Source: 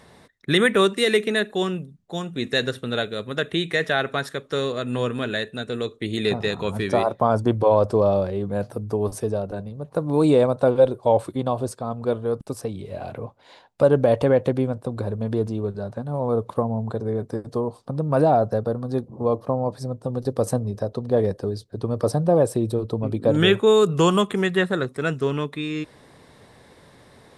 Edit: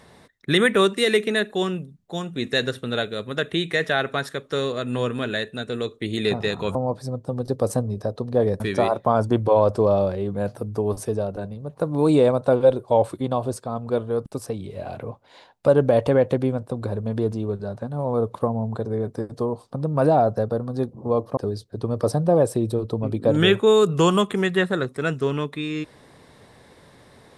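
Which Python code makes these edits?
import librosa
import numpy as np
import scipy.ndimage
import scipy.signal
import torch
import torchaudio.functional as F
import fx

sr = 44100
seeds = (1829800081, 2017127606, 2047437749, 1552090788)

y = fx.edit(x, sr, fx.move(start_s=19.52, length_s=1.85, to_s=6.75), tone=tone)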